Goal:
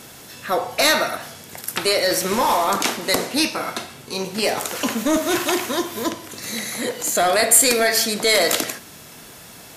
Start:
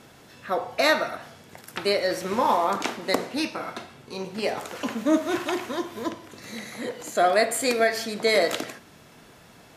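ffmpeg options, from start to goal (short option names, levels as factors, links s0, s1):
-af "apsyclip=9.44,crystalizer=i=2.5:c=0,volume=0.211"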